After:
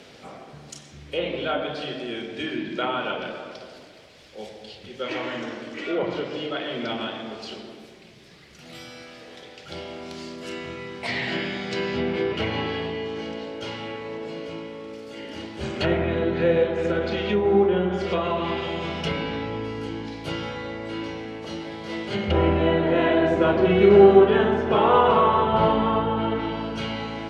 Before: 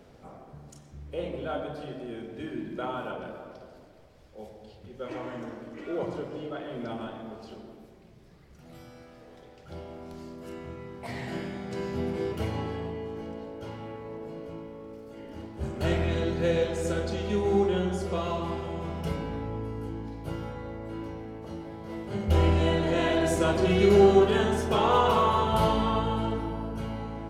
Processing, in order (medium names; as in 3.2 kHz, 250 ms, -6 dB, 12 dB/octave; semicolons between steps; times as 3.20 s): frequency weighting D; low-pass that closes with the level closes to 1.2 kHz, closed at -24.5 dBFS; trim +6.5 dB